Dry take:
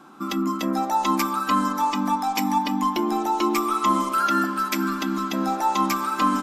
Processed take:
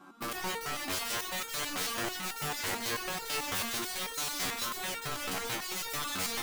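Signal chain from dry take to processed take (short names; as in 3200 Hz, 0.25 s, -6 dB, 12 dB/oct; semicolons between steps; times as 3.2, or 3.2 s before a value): tape echo 0.116 s, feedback 62%, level -20 dB, low-pass 3100 Hz; wrapped overs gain 22.5 dB; stepped resonator 9.1 Hz 93–460 Hz; gain +4 dB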